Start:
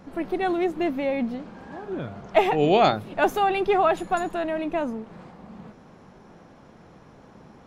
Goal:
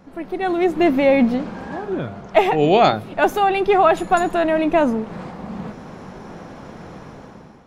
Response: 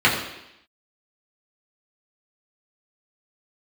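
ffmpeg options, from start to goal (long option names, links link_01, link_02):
-filter_complex "[0:a]dynaudnorm=framelen=190:gausssize=7:maxgain=14dB,asplit=2[link_01][link_02];[1:a]atrim=start_sample=2205[link_03];[link_02][link_03]afir=irnorm=-1:irlink=0,volume=-41dB[link_04];[link_01][link_04]amix=inputs=2:normalize=0,volume=-1dB"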